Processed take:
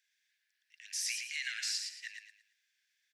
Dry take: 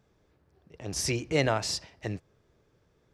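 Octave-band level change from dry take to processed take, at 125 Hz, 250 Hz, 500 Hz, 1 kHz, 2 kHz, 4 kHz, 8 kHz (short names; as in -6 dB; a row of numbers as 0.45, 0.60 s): under -40 dB, under -40 dB, under -40 dB, -29.0 dB, -3.5 dB, -2.5 dB, -2.5 dB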